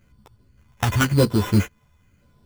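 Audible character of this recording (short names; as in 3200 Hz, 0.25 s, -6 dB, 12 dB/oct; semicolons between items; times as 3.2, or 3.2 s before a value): a buzz of ramps at a fixed pitch in blocks of 8 samples; phasing stages 4, 0.93 Hz, lowest notch 420–2100 Hz; aliases and images of a low sample rate 4500 Hz, jitter 0%; a shimmering, thickened sound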